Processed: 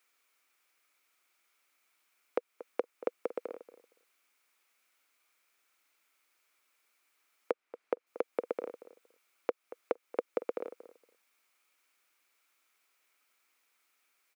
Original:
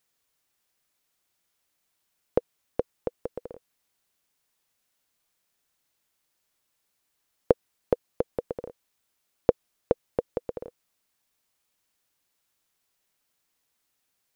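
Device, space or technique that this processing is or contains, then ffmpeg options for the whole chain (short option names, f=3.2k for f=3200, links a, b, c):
laptop speaker: -filter_complex "[0:a]highpass=f=270:w=0.5412,highpass=f=270:w=1.3066,equalizer=f=1.3k:t=o:w=0.46:g=9,equalizer=f=2.3k:t=o:w=0.4:g=11,alimiter=limit=-16.5dB:level=0:latency=1:release=292,asettb=1/sr,asplit=3[a][b][c];[a]atrim=end=7.514[d];[b]atrim=start=7.51:end=8.07,asetpts=PTS-STARTPTS,afade=t=in:d=0.004:c=qsin,afade=t=out:st=0.556:d=0.004:c=qsin,lowpass=f=2.7k:p=1[e];[c]atrim=start=8.066[f];[d][e]acrossfade=d=0.004:c1=hsin:c2=qsin[g];[g][f]acrossfade=d=0.004:c1=qsin:c2=hsin,asplit=2[h][i];[i]adelay=232,lowpass=f=1.6k:p=1,volume=-15dB,asplit=2[j][k];[k]adelay=232,lowpass=f=1.6k:p=1,volume=0.17[l];[h][j][l]amix=inputs=3:normalize=0"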